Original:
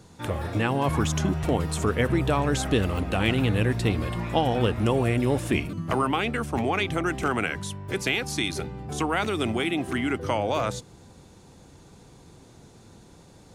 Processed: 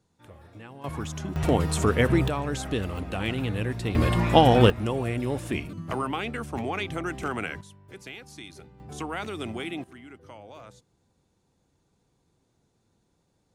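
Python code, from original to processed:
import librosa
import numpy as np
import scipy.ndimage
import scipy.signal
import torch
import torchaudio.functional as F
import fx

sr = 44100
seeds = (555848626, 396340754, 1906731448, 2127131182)

y = fx.gain(x, sr, db=fx.steps((0.0, -20.0), (0.84, -9.0), (1.36, 2.0), (2.28, -5.5), (3.95, 6.5), (4.7, -5.0), (7.61, -16.0), (8.8, -7.5), (9.84, -20.0)))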